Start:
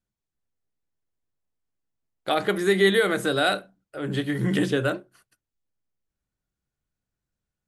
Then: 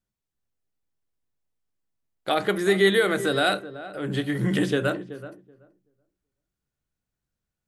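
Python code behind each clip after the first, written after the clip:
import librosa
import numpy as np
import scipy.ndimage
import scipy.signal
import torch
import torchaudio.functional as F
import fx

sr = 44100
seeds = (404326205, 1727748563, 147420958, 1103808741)

y = fx.echo_filtered(x, sr, ms=379, feedback_pct=16, hz=1100.0, wet_db=-13.0)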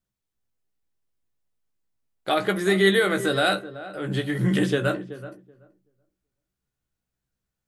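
y = fx.doubler(x, sr, ms=16.0, db=-7.0)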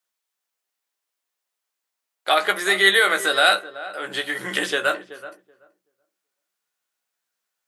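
y = scipy.signal.sosfilt(scipy.signal.butter(2, 760.0, 'highpass', fs=sr, output='sos'), x)
y = y * librosa.db_to_amplitude(7.5)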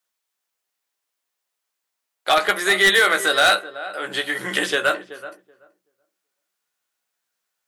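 y = np.clip(x, -10.0 ** (-11.5 / 20.0), 10.0 ** (-11.5 / 20.0))
y = y * librosa.db_to_amplitude(2.0)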